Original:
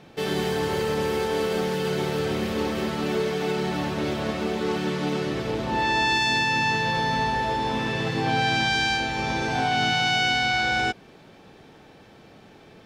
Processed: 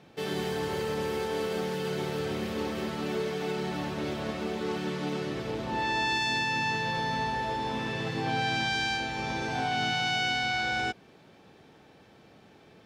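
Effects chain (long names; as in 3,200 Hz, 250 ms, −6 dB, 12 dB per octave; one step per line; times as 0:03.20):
high-pass filter 54 Hz
level −6 dB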